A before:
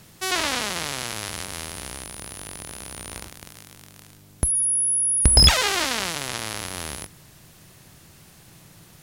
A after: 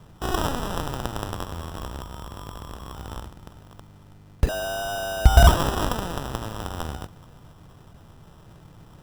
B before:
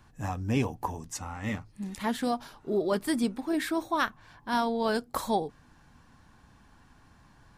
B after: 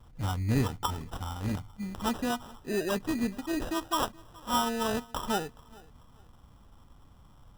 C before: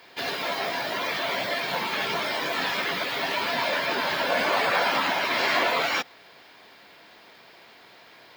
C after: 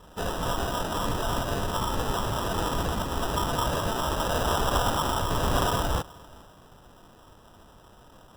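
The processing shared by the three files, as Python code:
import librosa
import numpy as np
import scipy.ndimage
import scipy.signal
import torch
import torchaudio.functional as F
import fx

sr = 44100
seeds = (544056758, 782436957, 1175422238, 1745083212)

p1 = scipy.signal.sosfilt(scipy.signal.butter(2, 9900.0, 'lowpass', fs=sr, output='sos'), x)
p2 = fx.rider(p1, sr, range_db=3, speed_s=2.0)
p3 = p1 + (p2 * 10.0 ** (-1.0 / 20.0))
p4 = fx.peak_eq(p3, sr, hz=950.0, db=6.5, octaves=0.26)
p5 = fx.sample_hold(p4, sr, seeds[0], rate_hz=2200.0, jitter_pct=0)
p6 = fx.low_shelf(p5, sr, hz=120.0, db=11.5)
p7 = p6 + fx.echo_feedback(p6, sr, ms=425, feedback_pct=29, wet_db=-23.5, dry=0)
y = p7 * 10.0 ** (-9.5 / 20.0)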